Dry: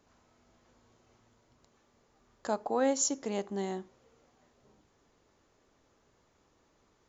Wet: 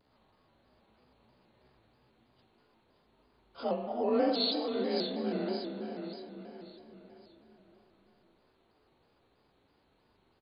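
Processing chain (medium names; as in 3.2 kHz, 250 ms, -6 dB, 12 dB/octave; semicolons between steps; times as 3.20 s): frequency axis rescaled in octaves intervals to 87%; tempo 0.68×; feedback delay 564 ms, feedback 43%, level -7.5 dB; spring tank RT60 2.2 s, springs 34/39 ms, chirp 75 ms, DRR 3 dB; vibrato with a chosen wave square 3.1 Hz, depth 100 cents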